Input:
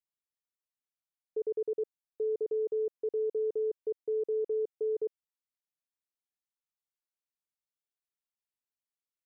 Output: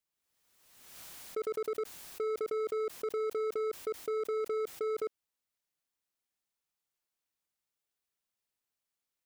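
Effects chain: in parallel at +2 dB: level held to a coarse grid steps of 14 dB; on the sum: overload inside the chain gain 31.5 dB; swell ahead of each attack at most 45 dB/s

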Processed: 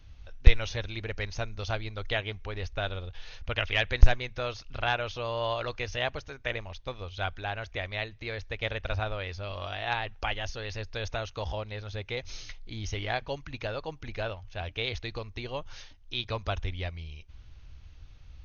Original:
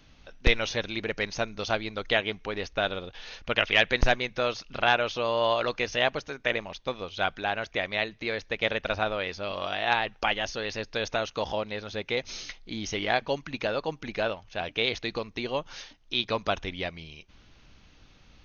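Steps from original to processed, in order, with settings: resonant low shelf 130 Hz +13.5 dB, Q 1.5; trim -5.5 dB

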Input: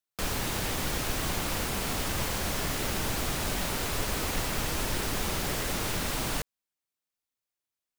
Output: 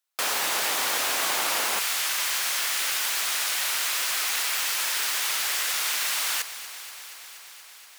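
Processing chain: echo whose repeats swap between lows and highs 119 ms, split 1.2 kHz, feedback 89%, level -13.5 dB; wow and flutter 27 cents; high-pass 710 Hz 12 dB/octave, from 1.79 s 1.5 kHz; trim +8 dB

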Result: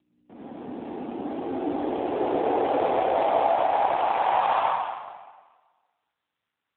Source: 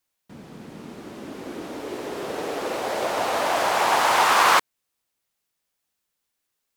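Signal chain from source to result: peaking EQ 760 Hz +12 dB 0.61 oct; compression 4:1, threshold -16 dBFS, peak gain reduction 8 dB; peak limiter -13.5 dBFS, peak gain reduction 6.5 dB; hum 60 Hz, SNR 32 dB; high-pass sweep 280 Hz -> 1.3 kHz, 3.88–5.03 s; saturation -16 dBFS, distortion -16 dB; reverberation RT60 1.4 s, pre-delay 69 ms, DRR -6.5 dB; trim -6 dB; AMR-NB 7.4 kbps 8 kHz

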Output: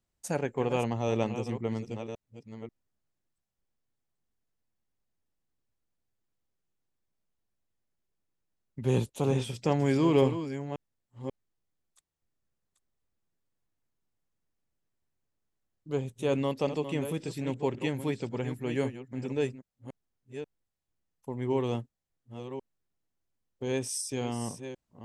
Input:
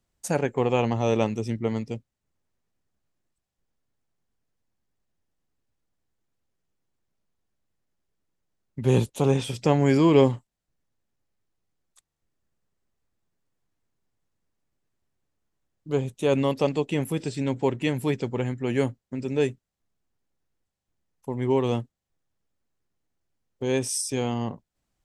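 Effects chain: chunks repeated in reverse 538 ms, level -10 dB; trim -6 dB

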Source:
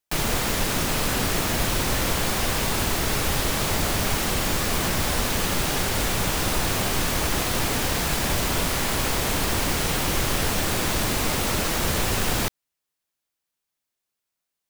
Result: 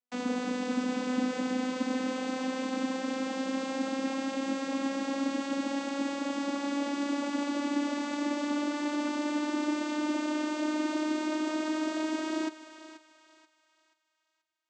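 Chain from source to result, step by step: vocoder on a note that slides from B3, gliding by +5 st; bass shelf 190 Hz +8 dB; thinning echo 482 ms, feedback 38%, high-pass 650 Hz, level -12 dB; trim -6.5 dB

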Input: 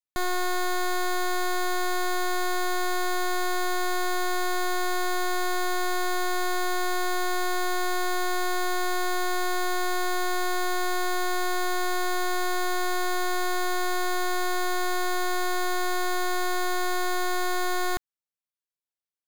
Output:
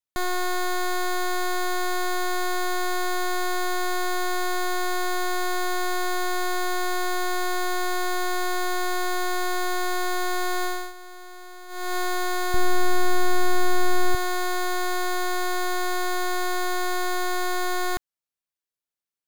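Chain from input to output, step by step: 10.64–11.97 s: dip -16.5 dB, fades 0.29 s; 12.54–14.15 s: bass shelf 280 Hz +11.5 dB; trim +1 dB

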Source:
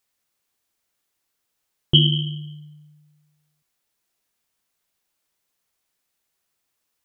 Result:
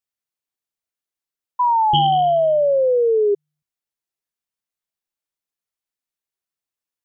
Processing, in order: spectral noise reduction 7 dB; painted sound fall, 1.59–3.35 s, 400–1000 Hz -9 dBFS; trim -7 dB

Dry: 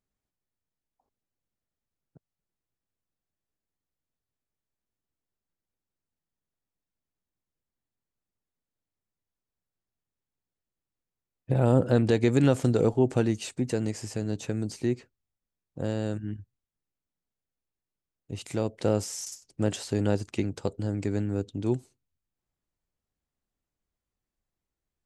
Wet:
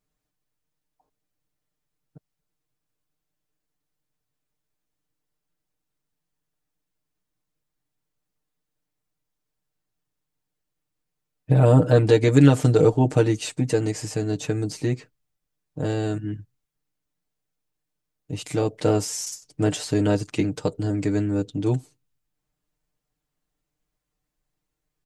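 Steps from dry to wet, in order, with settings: comb 6.6 ms, depth 93%; trim +3.5 dB

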